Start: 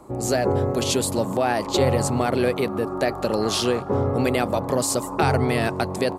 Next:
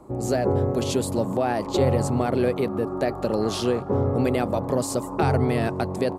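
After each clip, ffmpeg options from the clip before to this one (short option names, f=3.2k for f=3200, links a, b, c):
-af "tiltshelf=f=970:g=4,volume=-3.5dB"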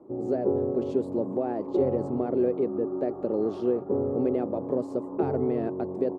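-af "bandpass=f=360:t=q:w=1.6:csg=0"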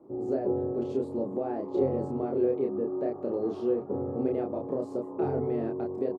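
-filter_complex "[0:a]asplit=2[a][b];[b]adelay=30,volume=-2.5dB[c];[a][c]amix=inputs=2:normalize=0,volume=-4.5dB"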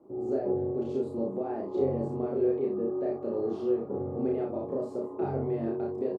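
-af "aecho=1:1:35|56:0.668|0.422,volume=-3dB"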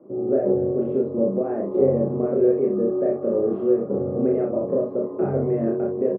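-af "highpass=110,equalizer=f=120:t=q:w=4:g=3,equalizer=f=190:t=q:w=4:g=7,equalizer=f=550:t=q:w=4:g=7,equalizer=f=860:t=q:w=4:g=-9,lowpass=f=2.1k:w=0.5412,lowpass=f=2.1k:w=1.3066,volume=7dB"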